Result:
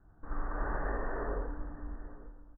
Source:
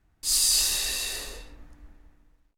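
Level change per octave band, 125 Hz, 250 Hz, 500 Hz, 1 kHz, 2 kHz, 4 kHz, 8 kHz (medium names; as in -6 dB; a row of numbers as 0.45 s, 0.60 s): +7.0 dB, +9.0 dB, +8.0 dB, +7.5 dB, -5.5 dB, under -40 dB, under -40 dB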